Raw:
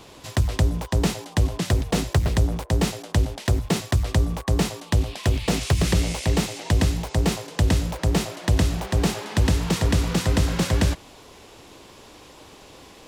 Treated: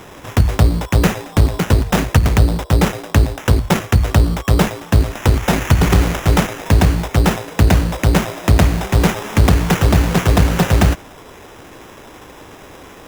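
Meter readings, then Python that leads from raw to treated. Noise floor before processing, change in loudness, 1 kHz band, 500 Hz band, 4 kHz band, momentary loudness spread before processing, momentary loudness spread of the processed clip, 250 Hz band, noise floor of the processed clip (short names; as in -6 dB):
-47 dBFS, +8.0 dB, +10.5 dB, +8.0 dB, +4.5 dB, 3 LU, 3 LU, +7.5 dB, -39 dBFS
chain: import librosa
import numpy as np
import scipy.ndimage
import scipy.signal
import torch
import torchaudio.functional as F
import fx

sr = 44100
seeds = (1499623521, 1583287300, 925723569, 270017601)

y = fx.self_delay(x, sr, depth_ms=0.77)
y = fx.sample_hold(y, sr, seeds[0], rate_hz=4400.0, jitter_pct=0)
y = y * 10.0 ** (8.5 / 20.0)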